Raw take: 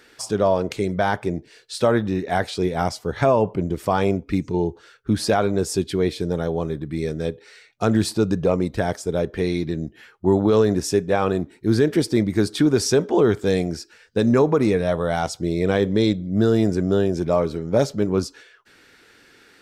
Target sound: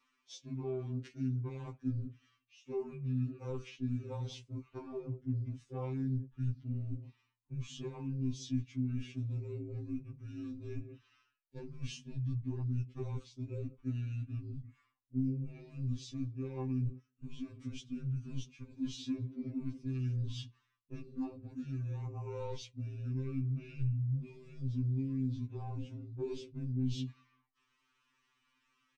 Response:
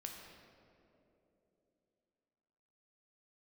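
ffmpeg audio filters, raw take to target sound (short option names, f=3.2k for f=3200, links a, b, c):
-filter_complex "[0:a]asplit=2[a][b];[b]adelay=121,lowpass=f=820:p=1,volume=-20.5dB,asplit=2[c][d];[d]adelay=121,lowpass=f=820:p=1,volume=0.42,asplit=2[e][f];[f]adelay=121,lowpass=f=820:p=1,volume=0.42[g];[a][c][e][g]amix=inputs=4:normalize=0,areverse,acompressor=threshold=-31dB:ratio=5,areverse,asoftclip=type=tanh:threshold=-21.5dB,agate=range=-11dB:threshold=-39dB:ratio=16:detection=peak,asubboost=boost=2:cutoff=150,afwtdn=0.0158,acrossover=split=160|3000[h][i][j];[i]acompressor=threshold=-38dB:ratio=6[k];[h][k][j]amix=inputs=3:normalize=0,asetrate=29856,aresample=44100,equalizer=f=160:t=o:w=0.67:g=-8,equalizer=f=630:t=o:w=0.67:g=-11,equalizer=f=2.5k:t=o:w=0.67:g=6,equalizer=f=6.3k:t=o:w=0.67:g=5,afftfilt=real='re*2.45*eq(mod(b,6),0)':imag='im*2.45*eq(mod(b,6),0)':win_size=2048:overlap=0.75,volume=5dB"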